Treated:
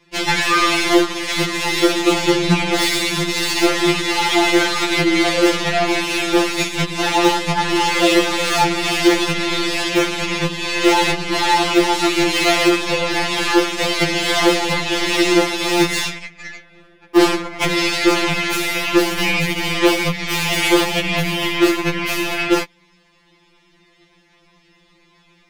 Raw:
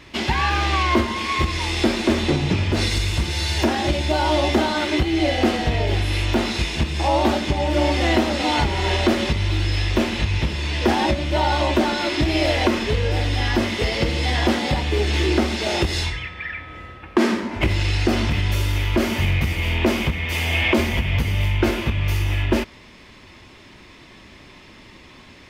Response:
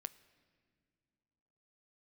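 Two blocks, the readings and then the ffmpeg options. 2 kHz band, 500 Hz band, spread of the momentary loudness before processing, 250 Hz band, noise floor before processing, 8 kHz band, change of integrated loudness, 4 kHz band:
+6.0 dB, +4.5 dB, 4 LU, +4.0 dB, −46 dBFS, +10.0 dB, +4.0 dB, +6.0 dB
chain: -af "aeval=exprs='0.398*(cos(1*acos(clip(val(0)/0.398,-1,1)))-cos(1*PI/2))+0.0141*(cos(4*acos(clip(val(0)/0.398,-1,1)))-cos(4*PI/2))+0.0178*(cos(6*acos(clip(val(0)/0.398,-1,1)))-cos(6*PI/2))+0.0501*(cos(7*acos(clip(val(0)/0.398,-1,1)))-cos(7*PI/2))':channel_layout=same,apsyclip=16.5dB,afftfilt=real='re*2.83*eq(mod(b,8),0)':imag='im*2.83*eq(mod(b,8),0)':win_size=2048:overlap=0.75,volume=-5dB"

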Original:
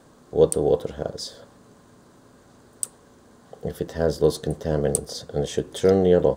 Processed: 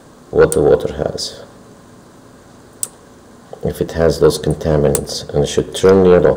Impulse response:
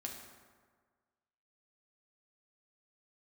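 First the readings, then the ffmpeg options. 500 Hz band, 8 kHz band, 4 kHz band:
+9.0 dB, +7.0 dB, +10.5 dB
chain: -filter_complex "[0:a]aeval=exprs='0.841*sin(PI/2*2.51*val(0)/0.841)':channel_layout=same,asplit=2[link_01][link_02];[1:a]atrim=start_sample=2205,lowpass=2900,adelay=102[link_03];[link_02][link_03]afir=irnorm=-1:irlink=0,volume=-17dB[link_04];[link_01][link_04]amix=inputs=2:normalize=0,volume=-1dB"

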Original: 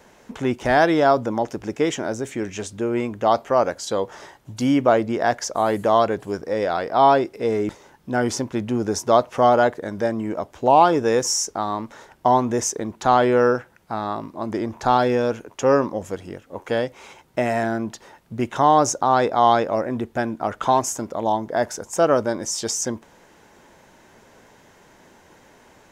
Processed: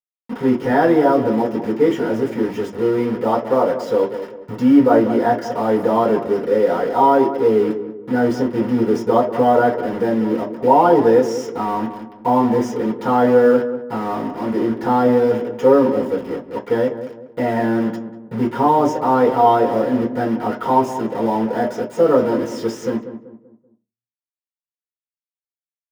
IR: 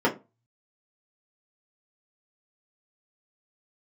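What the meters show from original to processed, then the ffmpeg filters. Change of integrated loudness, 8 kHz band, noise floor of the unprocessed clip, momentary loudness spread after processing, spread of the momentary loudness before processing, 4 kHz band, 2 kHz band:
+3.5 dB, below −10 dB, −53 dBFS, 10 LU, 12 LU, −6.0 dB, −0.5 dB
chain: -filter_complex "[0:a]aeval=exprs='val(0)+0.5*0.0316*sgn(val(0))':channel_layout=same,acrusher=bits=4:mix=0:aa=0.000001,asplit=2[link_01][link_02];[link_02]adelay=192,lowpass=frequency=1100:poles=1,volume=-10dB,asplit=2[link_03][link_04];[link_04]adelay=192,lowpass=frequency=1100:poles=1,volume=0.4,asplit=2[link_05][link_06];[link_06]adelay=192,lowpass=frequency=1100:poles=1,volume=0.4,asplit=2[link_07][link_08];[link_08]adelay=192,lowpass=frequency=1100:poles=1,volume=0.4[link_09];[link_01][link_03][link_05][link_07][link_09]amix=inputs=5:normalize=0[link_10];[1:a]atrim=start_sample=2205[link_11];[link_10][link_11]afir=irnorm=-1:irlink=0,volume=-16dB"

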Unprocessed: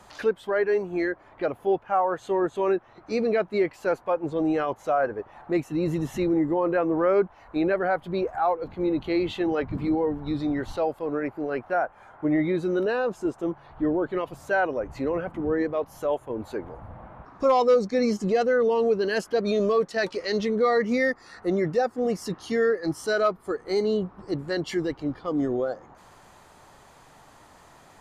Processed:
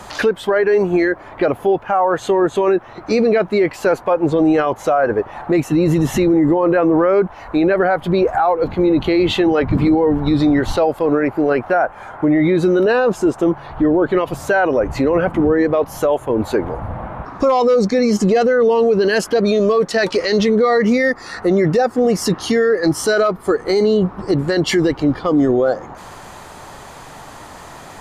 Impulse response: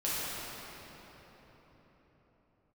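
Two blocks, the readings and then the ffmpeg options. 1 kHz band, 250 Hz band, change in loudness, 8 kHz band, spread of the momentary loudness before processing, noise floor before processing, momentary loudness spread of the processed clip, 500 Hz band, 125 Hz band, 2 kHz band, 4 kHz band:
+8.5 dB, +11.0 dB, +10.0 dB, can't be measured, 8 LU, −53 dBFS, 6 LU, +9.5 dB, +13.0 dB, +9.0 dB, +12.0 dB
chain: -af "alimiter=level_in=22.5dB:limit=-1dB:release=50:level=0:latency=1,volume=-6.5dB"

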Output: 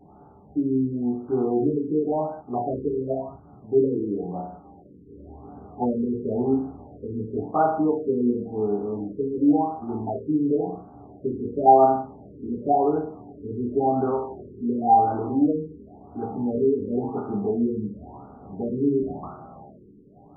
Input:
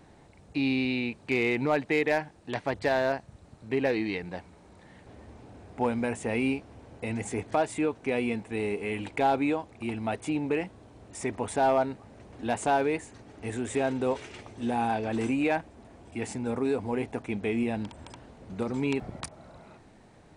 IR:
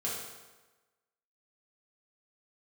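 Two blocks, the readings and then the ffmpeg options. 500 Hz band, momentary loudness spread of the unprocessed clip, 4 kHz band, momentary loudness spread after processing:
+5.0 dB, 14 LU, below −40 dB, 18 LU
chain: -filter_complex "[1:a]atrim=start_sample=2205,afade=type=out:start_time=0.43:duration=0.01,atrim=end_sample=19404,asetrate=74970,aresample=44100[link_01];[0:a][link_01]afir=irnorm=-1:irlink=0,afftfilt=real='re*lt(b*sr/1024,470*pow(1600/470,0.5+0.5*sin(2*PI*0.94*pts/sr)))':imag='im*lt(b*sr/1024,470*pow(1600/470,0.5+0.5*sin(2*PI*0.94*pts/sr)))':win_size=1024:overlap=0.75,volume=5.5dB"

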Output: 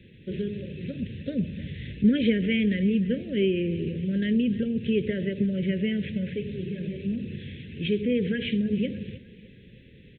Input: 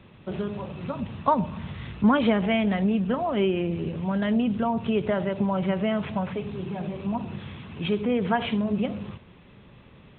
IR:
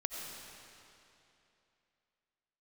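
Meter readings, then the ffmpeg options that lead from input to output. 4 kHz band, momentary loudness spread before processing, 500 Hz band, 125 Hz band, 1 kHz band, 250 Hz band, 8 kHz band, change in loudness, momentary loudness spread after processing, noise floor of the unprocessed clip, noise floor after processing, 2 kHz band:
0.0 dB, 12 LU, −2.5 dB, 0.0 dB, below −30 dB, 0.0 dB, can't be measured, −1.0 dB, 12 LU, −52 dBFS, −51 dBFS, −2.0 dB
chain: -af "asuperstop=centerf=940:order=12:qfactor=0.81,aecho=1:1:306|612|918|1224:0.112|0.0516|0.0237|0.0109"

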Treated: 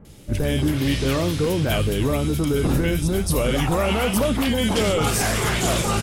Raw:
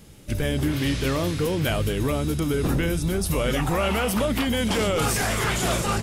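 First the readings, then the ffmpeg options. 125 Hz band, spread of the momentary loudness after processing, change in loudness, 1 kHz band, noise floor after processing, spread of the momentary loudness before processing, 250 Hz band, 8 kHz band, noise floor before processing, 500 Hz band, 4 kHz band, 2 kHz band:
+3.0 dB, 2 LU, +2.5 dB, +1.5 dB, −27 dBFS, 2 LU, +3.0 dB, +2.5 dB, −30 dBFS, +3.0 dB, +2.5 dB, +1.0 dB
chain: -filter_complex "[0:a]acrossover=split=1500[link_01][link_02];[link_02]adelay=50[link_03];[link_01][link_03]amix=inputs=2:normalize=0,volume=3dB" -ar 44100 -c:a nellymoser

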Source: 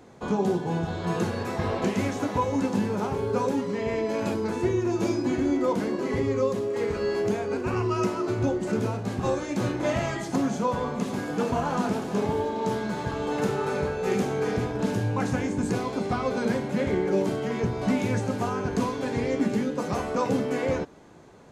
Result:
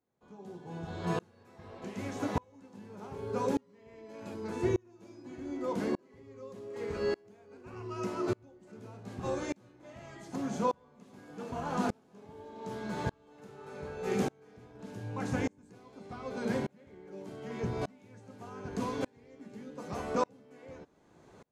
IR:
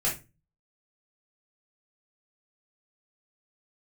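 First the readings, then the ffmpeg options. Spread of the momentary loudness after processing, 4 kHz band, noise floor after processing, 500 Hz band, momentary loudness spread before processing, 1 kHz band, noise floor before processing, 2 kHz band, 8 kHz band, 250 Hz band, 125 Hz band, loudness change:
20 LU, −10.5 dB, −63 dBFS, −11.0 dB, 3 LU, −9.5 dB, −33 dBFS, −11.0 dB, −10.5 dB, −11.5 dB, −11.5 dB, −10.0 dB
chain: -af "aeval=exprs='val(0)*pow(10,-34*if(lt(mod(-0.84*n/s,1),2*abs(-0.84)/1000),1-mod(-0.84*n/s,1)/(2*abs(-0.84)/1000),(mod(-0.84*n/s,1)-2*abs(-0.84)/1000)/(1-2*abs(-0.84)/1000))/20)':channel_layout=same,volume=-2dB"

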